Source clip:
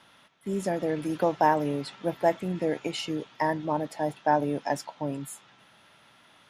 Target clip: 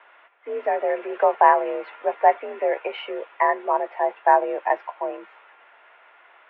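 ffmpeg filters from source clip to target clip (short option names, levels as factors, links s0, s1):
-af "highpass=f=400:t=q:w=0.5412,highpass=f=400:t=q:w=1.307,lowpass=f=2500:t=q:w=0.5176,lowpass=f=2500:t=q:w=0.7071,lowpass=f=2500:t=q:w=1.932,afreqshift=58,volume=2.37"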